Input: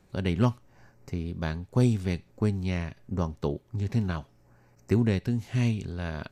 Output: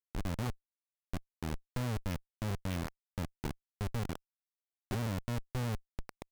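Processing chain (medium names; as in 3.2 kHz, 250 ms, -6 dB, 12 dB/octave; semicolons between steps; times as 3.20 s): time-frequency box 1.52–3.21 s, 460–3500 Hz +9 dB; Schmitt trigger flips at -25 dBFS; trim -5 dB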